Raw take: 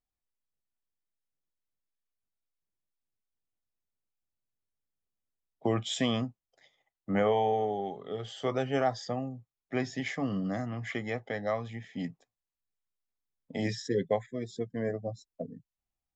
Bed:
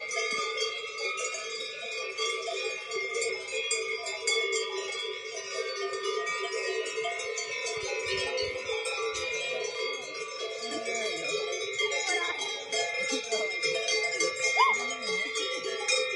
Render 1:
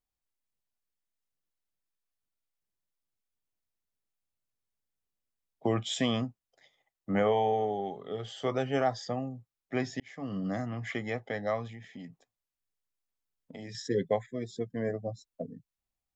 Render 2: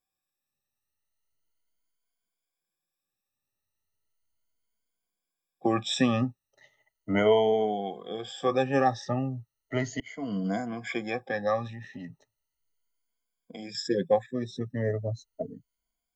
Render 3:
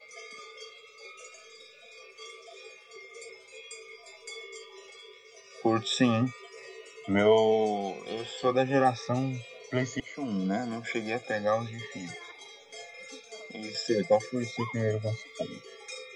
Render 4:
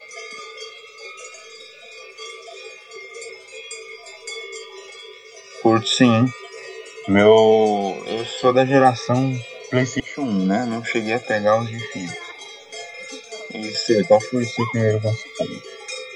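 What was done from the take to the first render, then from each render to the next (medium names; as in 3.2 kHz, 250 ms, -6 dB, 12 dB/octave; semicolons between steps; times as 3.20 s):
10.00–10.49 s: fade in; 11.67–13.75 s: compression 4:1, threshold -42 dBFS
drifting ripple filter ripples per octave 1.8, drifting +0.36 Hz, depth 20 dB
add bed -15 dB
trim +10.5 dB; peak limiter -2 dBFS, peak gain reduction 1.5 dB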